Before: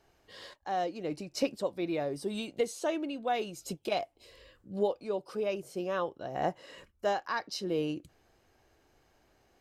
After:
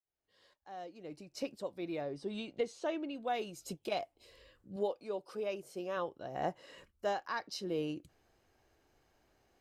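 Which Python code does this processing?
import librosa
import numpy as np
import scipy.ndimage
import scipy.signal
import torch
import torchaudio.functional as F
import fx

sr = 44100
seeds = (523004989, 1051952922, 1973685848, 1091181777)

y = fx.fade_in_head(x, sr, length_s=2.4)
y = fx.lowpass(y, sr, hz=4900.0, slope=12, at=(2.01, 3.15))
y = fx.peak_eq(y, sr, hz=60.0, db=-13.5, octaves=2.1, at=(4.76, 5.97))
y = y * librosa.db_to_amplitude(-4.5)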